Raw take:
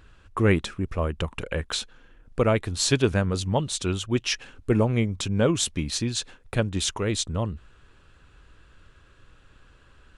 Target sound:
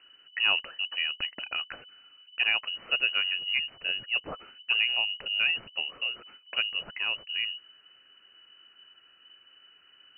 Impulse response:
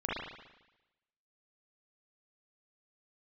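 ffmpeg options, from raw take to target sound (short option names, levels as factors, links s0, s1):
-af "asoftclip=type=tanh:threshold=0.299,lowpass=f=2600:t=q:w=0.5098,lowpass=f=2600:t=q:w=0.6013,lowpass=f=2600:t=q:w=0.9,lowpass=f=2600:t=q:w=2.563,afreqshift=-3000,volume=0.596"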